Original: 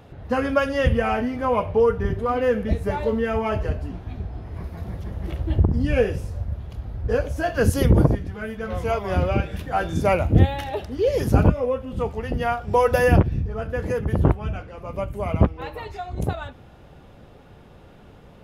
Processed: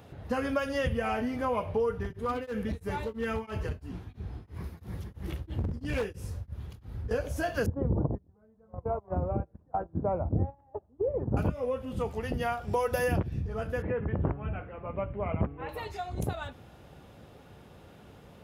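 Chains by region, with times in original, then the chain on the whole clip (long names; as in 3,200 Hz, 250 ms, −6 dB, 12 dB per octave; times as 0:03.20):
0:01.97–0:07.11: parametric band 650 Hz −8.5 dB 0.48 octaves + gain into a clipping stage and back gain 18 dB + tremolo along a rectified sine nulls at 3 Hz
0:07.66–0:11.37: noise gate −25 dBFS, range −25 dB + Chebyshev low-pass filter 980 Hz, order 3
0:13.82–0:15.69: inverse Chebyshev low-pass filter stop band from 6,100 Hz, stop band 50 dB + hum removal 141.4 Hz, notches 12
whole clip: high-pass filter 58 Hz; high-shelf EQ 5,400 Hz +7.5 dB; downward compressor 2.5 to 1, threshold −24 dBFS; level −4 dB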